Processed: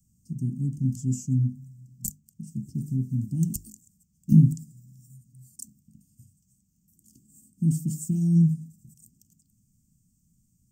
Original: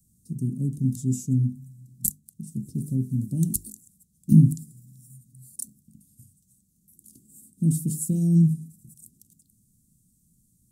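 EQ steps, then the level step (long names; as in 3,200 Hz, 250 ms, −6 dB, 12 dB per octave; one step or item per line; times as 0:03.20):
phaser with its sweep stopped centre 2,600 Hz, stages 8
0.0 dB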